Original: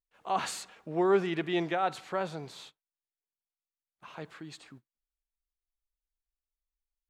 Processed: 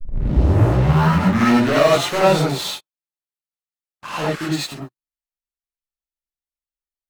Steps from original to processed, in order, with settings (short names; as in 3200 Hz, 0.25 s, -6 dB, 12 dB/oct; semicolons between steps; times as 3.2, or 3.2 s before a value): tape start at the beginning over 2.13 s; sample leveller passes 5; non-linear reverb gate 0.12 s rising, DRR -7.5 dB; gain -3 dB